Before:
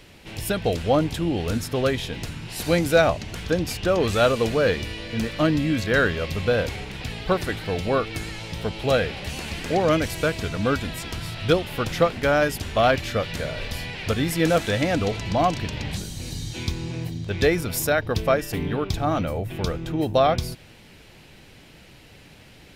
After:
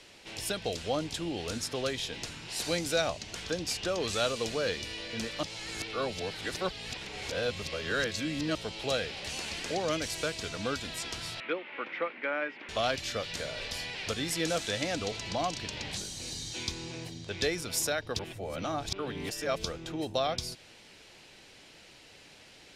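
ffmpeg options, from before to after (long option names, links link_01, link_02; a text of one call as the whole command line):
ffmpeg -i in.wav -filter_complex "[0:a]asettb=1/sr,asplit=3[link_01][link_02][link_03];[link_01]atrim=end=11.404[link_04];[link_02]atrim=start=11.4:end=12.69,asetpts=PTS-STARTPTS,afade=type=in:duration=0.004:curve=qsin,afade=type=out:start_time=1.286:duration=0.004:curve=qsin,highpass=frequency=270:width=0.5412,highpass=frequency=270:width=1.3066,equalizer=frequency=420:width_type=q:width=4:gain=-6,equalizer=frequency=700:width_type=q:width=4:gain=-8,equalizer=frequency=2200:width_type=q:width=4:gain=7,lowpass=frequency=2300:width=0.5412,lowpass=frequency=2300:width=1.3066[link_05];[link_03]atrim=start=12.686[link_06];[link_04][link_05]acrossfade=duration=0.004:curve1=hsin:curve2=qsin[link_07];[link_07][link_06]acrossfade=duration=0.004:curve1=qsin:curve2=hsin,asplit=5[link_08][link_09][link_10][link_11][link_12];[link_08]atrim=end=5.432[link_13];[link_09]atrim=start=5.428:end=8.552,asetpts=PTS-STARTPTS,areverse[link_14];[link_10]atrim=start=8.548:end=18.192[link_15];[link_11]atrim=start=18.188:end=19.642,asetpts=PTS-STARTPTS,areverse[link_16];[link_12]atrim=start=19.638[link_17];[link_13][link_14]acrossfade=duration=0.004:curve1=hsin:curve2=hsin[link_18];[link_18][link_15]acrossfade=duration=0.004:curve1=hsin:curve2=hsin[link_19];[link_19][link_16]acrossfade=duration=0.004:curve1=hsin:curve2=hsin[link_20];[link_20][link_17]acrossfade=duration=0.004:curve1=hsin:curve2=hsin,lowpass=7200,bass=frequency=250:gain=-11,treble=frequency=4000:gain=8,acrossover=split=230|3000[link_21][link_22][link_23];[link_22]acompressor=threshold=-36dB:ratio=1.5[link_24];[link_21][link_24][link_23]amix=inputs=3:normalize=0,volume=-4.5dB" out.wav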